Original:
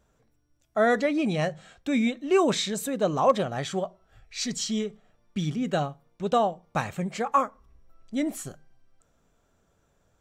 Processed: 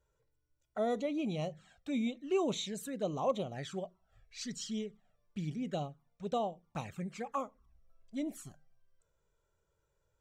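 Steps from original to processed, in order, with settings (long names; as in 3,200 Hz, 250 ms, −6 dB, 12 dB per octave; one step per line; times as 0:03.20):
flanger swept by the level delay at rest 2.1 ms, full sweep at −23 dBFS
level −9 dB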